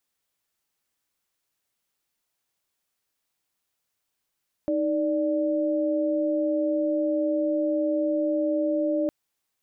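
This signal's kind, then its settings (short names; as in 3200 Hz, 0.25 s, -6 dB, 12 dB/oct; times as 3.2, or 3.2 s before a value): chord D#4/D5 sine, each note -24.5 dBFS 4.41 s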